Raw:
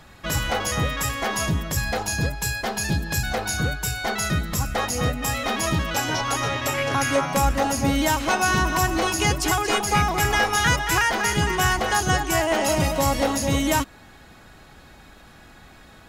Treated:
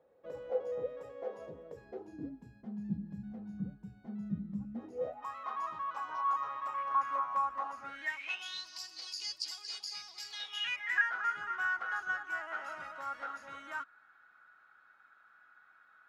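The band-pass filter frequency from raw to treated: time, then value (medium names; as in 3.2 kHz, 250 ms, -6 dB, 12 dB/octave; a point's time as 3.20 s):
band-pass filter, Q 13
1.66 s 500 Hz
2.65 s 200 Hz
4.72 s 200 Hz
5.27 s 1.1 kHz
7.72 s 1.1 kHz
8.69 s 4.7 kHz
10.25 s 4.7 kHz
11.14 s 1.4 kHz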